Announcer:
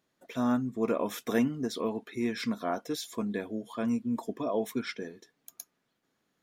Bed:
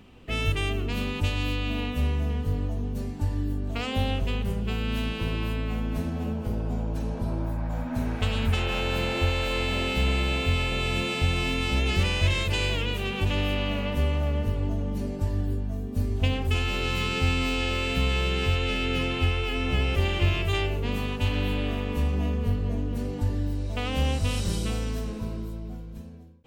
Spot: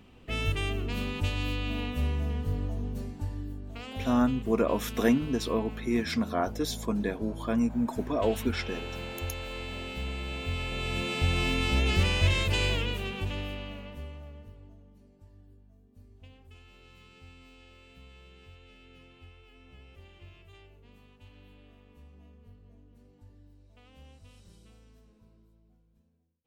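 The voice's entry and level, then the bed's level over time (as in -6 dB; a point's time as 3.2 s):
3.70 s, +3.0 dB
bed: 2.88 s -3.5 dB
3.64 s -11 dB
10.18 s -11 dB
11.42 s -1 dB
12.71 s -1 dB
15 s -28 dB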